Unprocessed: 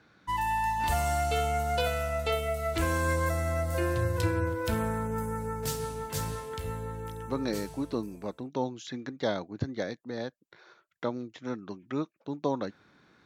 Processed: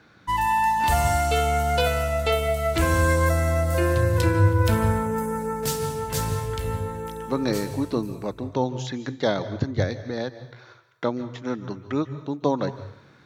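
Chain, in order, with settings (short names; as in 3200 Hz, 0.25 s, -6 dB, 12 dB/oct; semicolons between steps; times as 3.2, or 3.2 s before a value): on a send: resonant low shelf 160 Hz +10 dB, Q 3 + reverb RT60 0.75 s, pre-delay 0.138 s, DRR 13.5 dB; on the sum: gain +6.5 dB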